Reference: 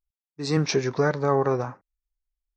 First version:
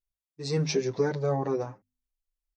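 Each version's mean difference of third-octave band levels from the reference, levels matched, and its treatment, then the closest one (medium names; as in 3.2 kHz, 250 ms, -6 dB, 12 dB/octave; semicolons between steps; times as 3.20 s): 3.0 dB: peaking EQ 1.3 kHz -9.5 dB 1.2 oct; hum notches 50/100/150/200/250 Hz; endless flanger 7.7 ms +1.2 Hz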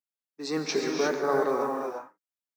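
8.0 dB: steep high-pass 200 Hz 36 dB/octave; modulation noise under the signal 33 dB; gated-style reverb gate 380 ms rising, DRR 0.5 dB; trim -4.5 dB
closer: first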